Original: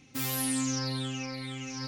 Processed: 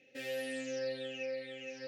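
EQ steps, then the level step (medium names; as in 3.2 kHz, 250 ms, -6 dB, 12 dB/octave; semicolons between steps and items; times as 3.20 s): vowel filter e; bass shelf 160 Hz -7 dB; peaking EQ 1.3 kHz -3.5 dB 1.6 oct; +9.5 dB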